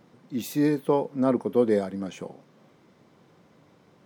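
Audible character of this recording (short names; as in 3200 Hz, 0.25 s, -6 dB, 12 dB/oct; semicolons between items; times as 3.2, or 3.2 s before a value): noise floor -59 dBFS; spectral tilt -5.5 dB/oct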